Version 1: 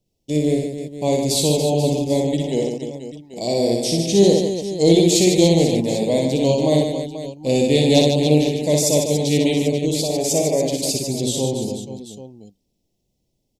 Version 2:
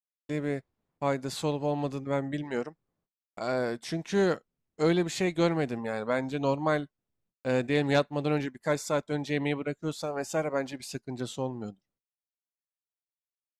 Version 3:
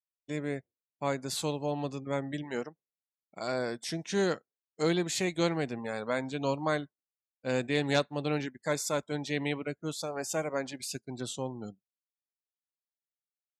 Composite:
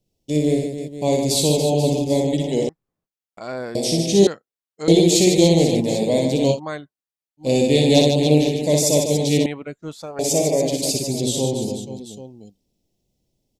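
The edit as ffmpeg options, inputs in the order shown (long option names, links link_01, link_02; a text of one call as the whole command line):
ffmpeg -i take0.wav -i take1.wav -i take2.wav -filter_complex "[1:a]asplit=2[link_01][link_02];[2:a]asplit=2[link_03][link_04];[0:a]asplit=5[link_05][link_06][link_07][link_08][link_09];[link_05]atrim=end=2.692[link_10];[link_01]atrim=start=2.688:end=3.752[link_11];[link_06]atrim=start=3.748:end=4.272[link_12];[link_03]atrim=start=4.268:end=4.882[link_13];[link_07]atrim=start=4.878:end=6.6[link_14];[link_04]atrim=start=6.5:end=7.47[link_15];[link_08]atrim=start=7.37:end=9.462[link_16];[link_02]atrim=start=9.458:end=10.192[link_17];[link_09]atrim=start=10.188[link_18];[link_10][link_11]acrossfade=duration=0.004:curve1=hsin:curve2=hsin[link_19];[link_19][link_12]acrossfade=duration=0.004:curve1=hsin:curve2=hsin[link_20];[link_20][link_13]acrossfade=duration=0.004:curve1=hsin:curve2=hsin[link_21];[link_21][link_14]acrossfade=duration=0.004:curve1=hsin:curve2=hsin[link_22];[link_22][link_15]acrossfade=duration=0.1:curve1=tri:curve2=tri[link_23];[link_23][link_16]acrossfade=duration=0.1:curve1=tri:curve2=tri[link_24];[link_24][link_17]acrossfade=duration=0.004:curve1=hsin:curve2=hsin[link_25];[link_25][link_18]acrossfade=duration=0.004:curve1=hsin:curve2=hsin" out.wav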